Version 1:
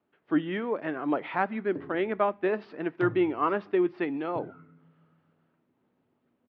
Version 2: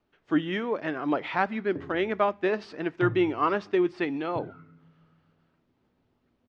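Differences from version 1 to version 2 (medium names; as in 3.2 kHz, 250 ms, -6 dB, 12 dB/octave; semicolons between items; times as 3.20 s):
speech: remove distance through air 330 m; master: remove high-pass 150 Hz 12 dB/octave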